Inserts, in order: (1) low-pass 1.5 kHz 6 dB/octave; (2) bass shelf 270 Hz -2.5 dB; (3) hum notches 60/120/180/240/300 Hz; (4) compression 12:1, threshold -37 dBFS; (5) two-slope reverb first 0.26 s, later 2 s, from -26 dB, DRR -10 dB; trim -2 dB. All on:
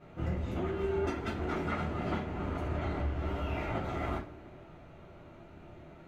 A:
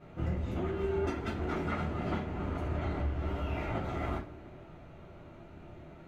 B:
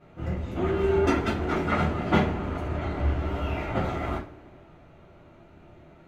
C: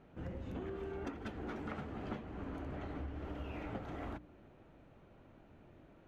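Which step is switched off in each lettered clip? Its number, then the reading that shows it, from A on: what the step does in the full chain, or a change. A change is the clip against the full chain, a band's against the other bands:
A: 2, momentary loudness spread change -1 LU; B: 4, mean gain reduction 4.5 dB; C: 5, crest factor change +4.0 dB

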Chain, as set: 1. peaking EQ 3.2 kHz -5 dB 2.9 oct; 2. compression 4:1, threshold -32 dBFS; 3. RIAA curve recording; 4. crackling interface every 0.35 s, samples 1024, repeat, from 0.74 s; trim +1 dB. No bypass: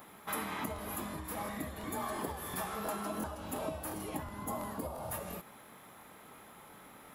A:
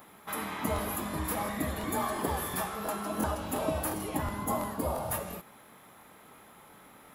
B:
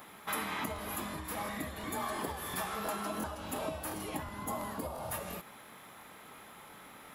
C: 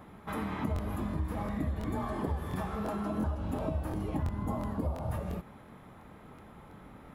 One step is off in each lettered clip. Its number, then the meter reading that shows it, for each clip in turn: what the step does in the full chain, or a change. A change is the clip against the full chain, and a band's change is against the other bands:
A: 2, momentary loudness spread change -12 LU; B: 1, loudness change +1.5 LU; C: 3, 8 kHz band -14.0 dB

